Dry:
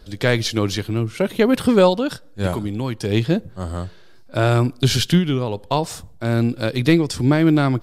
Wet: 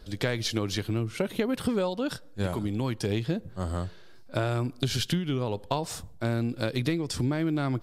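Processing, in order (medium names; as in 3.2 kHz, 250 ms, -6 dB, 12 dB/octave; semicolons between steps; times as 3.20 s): compression 12:1, threshold -20 dBFS, peak gain reduction 12 dB; trim -3.5 dB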